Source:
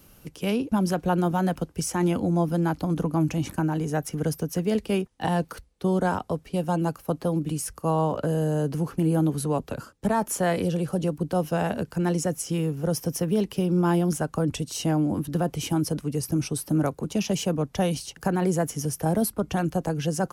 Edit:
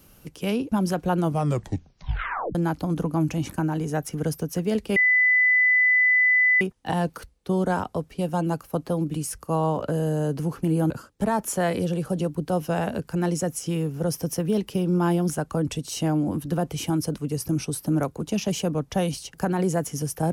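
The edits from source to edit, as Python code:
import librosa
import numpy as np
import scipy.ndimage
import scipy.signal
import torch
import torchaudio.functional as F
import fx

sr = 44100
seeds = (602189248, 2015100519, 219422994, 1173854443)

y = fx.edit(x, sr, fx.tape_stop(start_s=1.18, length_s=1.37),
    fx.insert_tone(at_s=4.96, length_s=1.65, hz=2000.0, db=-15.5),
    fx.cut(start_s=9.25, length_s=0.48), tone=tone)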